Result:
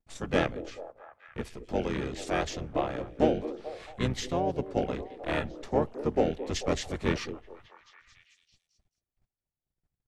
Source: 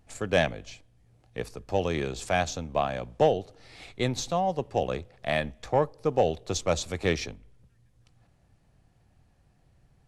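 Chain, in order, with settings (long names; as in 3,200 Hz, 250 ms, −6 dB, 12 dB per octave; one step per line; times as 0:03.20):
pitch-shifted copies added −12 semitones −2 dB, −4 semitones −3 dB
noise gate −53 dBFS, range −30 dB
echo through a band-pass that steps 219 ms, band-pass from 380 Hz, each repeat 0.7 octaves, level −10 dB
level −6 dB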